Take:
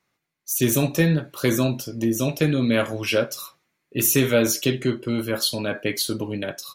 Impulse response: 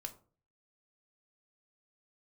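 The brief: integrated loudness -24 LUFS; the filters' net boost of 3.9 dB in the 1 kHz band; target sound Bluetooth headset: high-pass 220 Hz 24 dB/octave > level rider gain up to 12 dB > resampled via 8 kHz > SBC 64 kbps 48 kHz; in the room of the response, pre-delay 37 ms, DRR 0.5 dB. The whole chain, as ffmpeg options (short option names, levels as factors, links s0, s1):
-filter_complex "[0:a]equalizer=f=1000:t=o:g=5.5,asplit=2[s0][s1];[1:a]atrim=start_sample=2205,adelay=37[s2];[s1][s2]afir=irnorm=-1:irlink=0,volume=1.33[s3];[s0][s3]amix=inputs=2:normalize=0,highpass=f=220:w=0.5412,highpass=f=220:w=1.3066,dynaudnorm=m=3.98,aresample=8000,aresample=44100,volume=0.75" -ar 48000 -c:a sbc -b:a 64k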